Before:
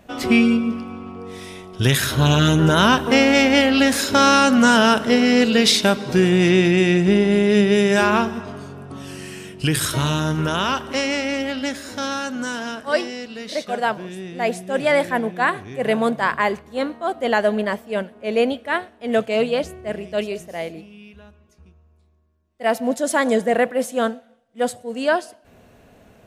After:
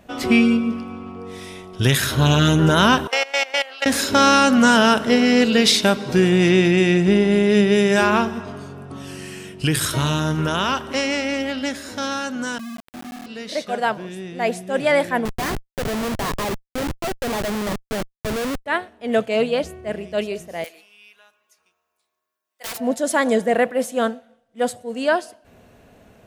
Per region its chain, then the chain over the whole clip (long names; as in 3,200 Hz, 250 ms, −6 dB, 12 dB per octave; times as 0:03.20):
0:03.07–0:03.86: high-pass filter 580 Hz 24 dB per octave + output level in coarse steps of 19 dB
0:12.58–0:13.26: flat-topped band-pass 220 Hz, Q 4 + bit-depth reduction 6 bits, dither none
0:15.25–0:18.66: variable-slope delta modulation 16 kbit/s + comparator with hysteresis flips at −25 dBFS
0:20.64–0:22.77: high-pass filter 1,000 Hz + high-shelf EQ 8,600 Hz +11 dB + wrap-around overflow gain 25 dB
whole clip: no processing